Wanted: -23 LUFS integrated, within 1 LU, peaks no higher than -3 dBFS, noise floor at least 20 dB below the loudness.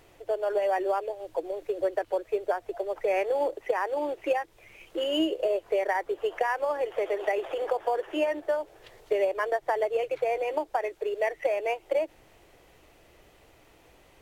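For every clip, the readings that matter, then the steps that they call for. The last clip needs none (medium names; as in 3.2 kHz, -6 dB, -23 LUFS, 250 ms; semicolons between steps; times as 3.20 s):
loudness -29.0 LUFS; peak level -12.5 dBFS; loudness target -23.0 LUFS
-> trim +6 dB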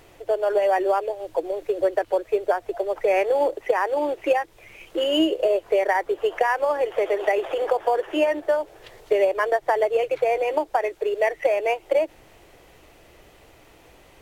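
loudness -23.0 LUFS; peak level -6.5 dBFS; noise floor -52 dBFS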